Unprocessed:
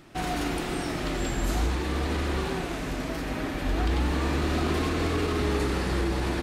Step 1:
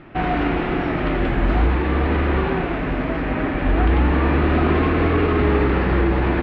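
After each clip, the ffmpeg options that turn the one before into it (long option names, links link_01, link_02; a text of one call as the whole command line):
ffmpeg -i in.wav -af "lowpass=frequency=2600:width=0.5412,lowpass=frequency=2600:width=1.3066,volume=9dB" out.wav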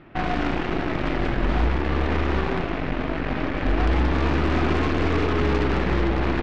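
ffmpeg -i in.wav -af "bass=frequency=250:gain=1,treble=frequency=4000:gain=4,aeval=exprs='0.473*(cos(1*acos(clip(val(0)/0.473,-1,1)))-cos(1*PI/2))+0.0668*(cos(8*acos(clip(val(0)/0.473,-1,1)))-cos(8*PI/2))':channel_layout=same,volume=-5.5dB" out.wav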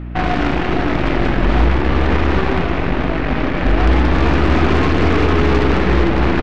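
ffmpeg -i in.wav -af "aeval=exprs='val(0)+0.0224*(sin(2*PI*60*n/s)+sin(2*PI*2*60*n/s)/2+sin(2*PI*3*60*n/s)/3+sin(2*PI*4*60*n/s)/4+sin(2*PI*5*60*n/s)/5)':channel_layout=same,aecho=1:1:461:0.335,volume=7dB" out.wav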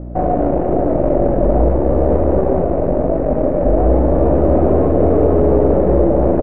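ffmpeg -i in.wav -af "lowpass=frequency=580:width_type=q:width=5,volume=-1.5dB" out.wav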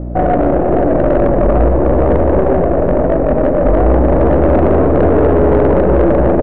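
ffmpeg -i in.wav -af "asoftclip=type=tanh:threshold=-11dB,volume=6dB" out.wav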